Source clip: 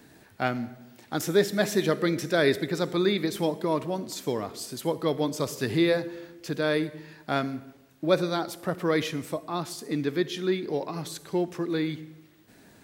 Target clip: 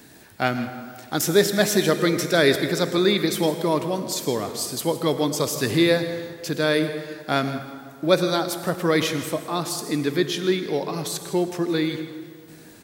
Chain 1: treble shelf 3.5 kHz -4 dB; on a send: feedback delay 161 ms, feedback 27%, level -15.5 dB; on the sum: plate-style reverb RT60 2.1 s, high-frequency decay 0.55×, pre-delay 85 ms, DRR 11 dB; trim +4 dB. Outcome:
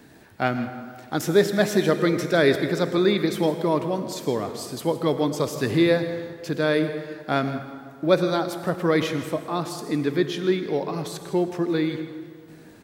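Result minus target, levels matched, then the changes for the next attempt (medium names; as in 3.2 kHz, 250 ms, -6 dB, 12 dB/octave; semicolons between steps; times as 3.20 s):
8 kHz band -8.0 dB
change: treble shelf 3.5 kHz +7 dB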